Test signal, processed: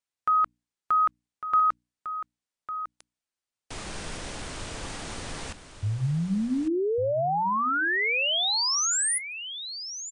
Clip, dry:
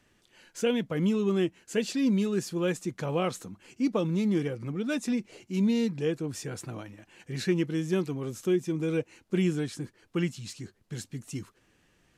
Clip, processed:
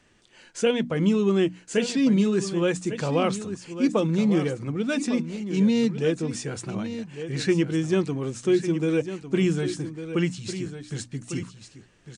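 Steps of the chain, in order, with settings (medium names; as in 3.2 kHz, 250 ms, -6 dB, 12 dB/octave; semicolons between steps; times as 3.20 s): hum notches 60/120/180/240/300 Hz; delay 1152 ms -11 dB; trim +5.5 dB; MP3 128 kbps 22.05 kHz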